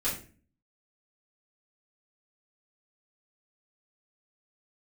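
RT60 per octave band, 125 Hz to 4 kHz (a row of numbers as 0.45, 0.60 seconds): 0.65, 0.65, 0.45, 0.35, 0.40, 0.30 seconds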